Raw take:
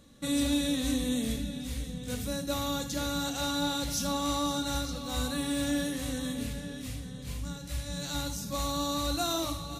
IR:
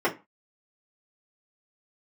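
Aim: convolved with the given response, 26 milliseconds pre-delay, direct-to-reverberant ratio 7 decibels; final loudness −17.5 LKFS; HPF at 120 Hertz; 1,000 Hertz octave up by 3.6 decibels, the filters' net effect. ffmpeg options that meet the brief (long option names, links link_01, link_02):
-filter_complex "[0:a]highpass=120,equalizer=frequency=1000:width_type=o:gain=4.5,asplit=2[link_01][link_02];[1:a]atrim=start_sample=2205,adelay=26[link_03];[link_02][link_03]afir=irnorm=-1:irlink=0,volume=-21dB[link_04];[link_01][link_04]amix=inputs=2:normalize=0,volume=13dB"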